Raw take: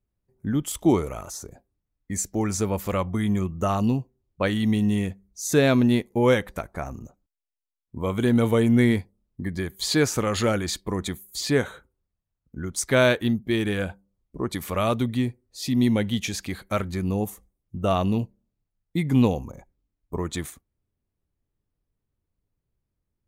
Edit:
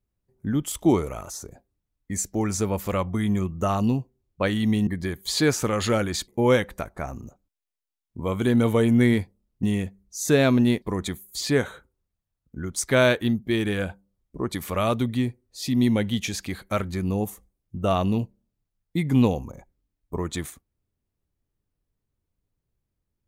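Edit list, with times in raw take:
4.87–6.06 s: swap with 9.41–10.82 s

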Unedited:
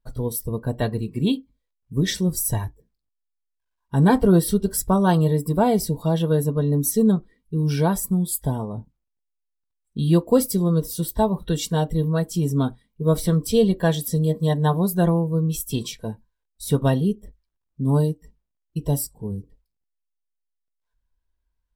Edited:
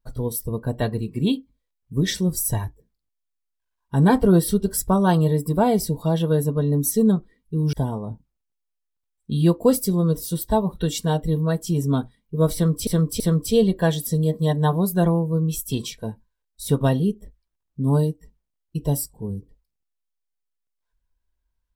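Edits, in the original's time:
7.73–8.40 s: delete
13.21–13.54 s: loop, 3 plays

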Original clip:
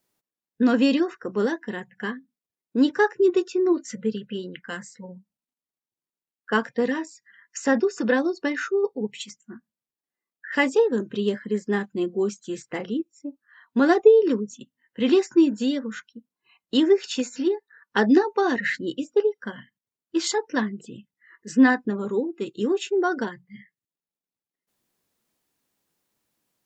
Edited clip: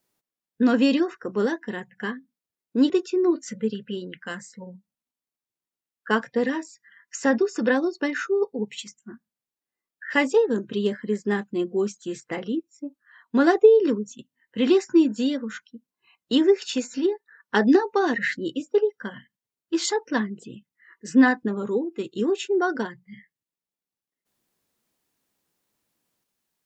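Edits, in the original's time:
2.90–3.32 s: delete

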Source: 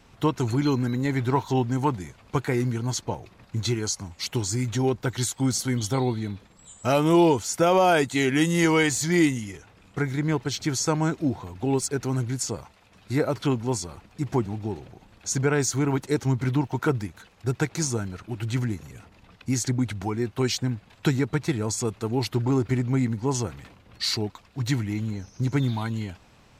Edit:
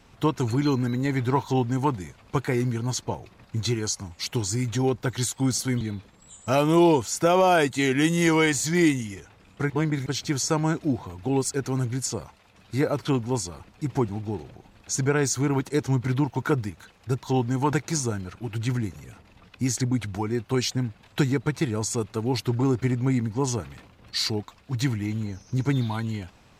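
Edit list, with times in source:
1.44–1.94 s: copy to 17.60 s
5.81–6.18 s: delete
10.07–10.43 s: reverse

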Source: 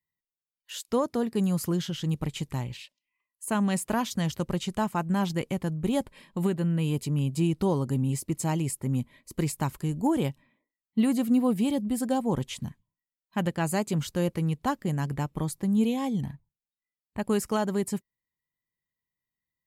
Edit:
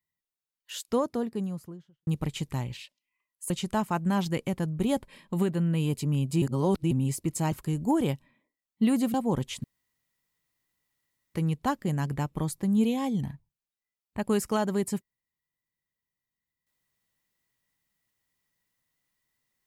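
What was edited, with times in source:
0.79–2.07 s: studio fade out
3.50–4.54 s: delete
7.46–7.95 s: reverse
8.56–9.68 s: delete
11.30–12.14 s: delete
12.64–14.34 s: room tone

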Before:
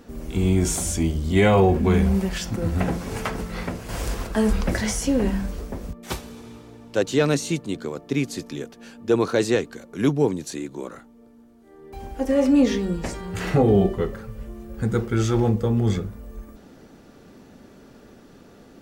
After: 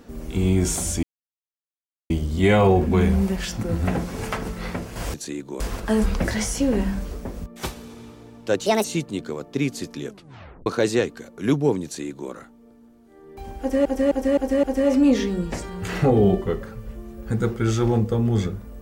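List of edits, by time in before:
1.03 s: insert silence 1.07 s
7.13–7.40 s: speed 147%
8.62 s: tape stop 0.60 s
10.40–10.86 s: copy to 4.07 s
12.15–12.41 s: loop, 5 plays

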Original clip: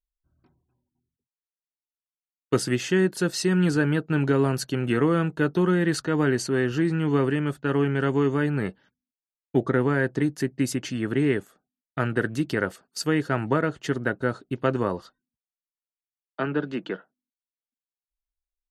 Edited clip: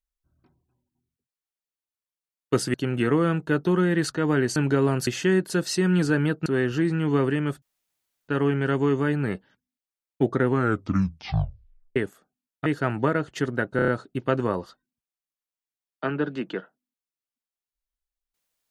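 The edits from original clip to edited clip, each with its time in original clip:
2.74–4.13 s: swap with 4.64–6.46 s
7.62 s: insert room tone 0.66 s
9.81 s: tape stop 1.49 s
12.00–13.14 s: delete
14.24 s: stutter 0.03 s, 5 plays

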